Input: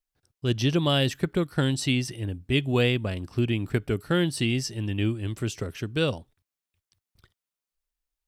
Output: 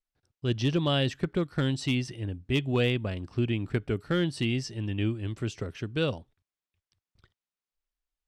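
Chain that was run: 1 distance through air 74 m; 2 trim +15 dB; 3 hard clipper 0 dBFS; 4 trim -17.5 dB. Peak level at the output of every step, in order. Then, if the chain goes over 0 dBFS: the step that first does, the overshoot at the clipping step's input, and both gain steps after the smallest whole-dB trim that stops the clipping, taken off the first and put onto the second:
-10.0 dBFS, +5.0 dBFS, 0.0 dBFS, -17.5 dBFS; step 2, 5.0 dB; step 2 +10 dB, step 4 -12.5 dB

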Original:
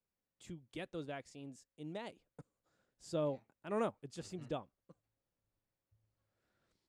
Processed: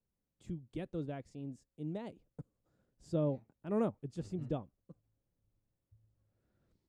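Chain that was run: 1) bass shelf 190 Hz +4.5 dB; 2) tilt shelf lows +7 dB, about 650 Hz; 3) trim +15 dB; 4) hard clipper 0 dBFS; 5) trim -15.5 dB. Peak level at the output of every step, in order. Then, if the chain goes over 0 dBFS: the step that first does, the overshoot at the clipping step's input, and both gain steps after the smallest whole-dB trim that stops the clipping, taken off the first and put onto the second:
-22.5 dBFS, -20.5 dBFS, -5.5 dBFS, -5.5 dBFS, -21.0 dBFS; nothing clips

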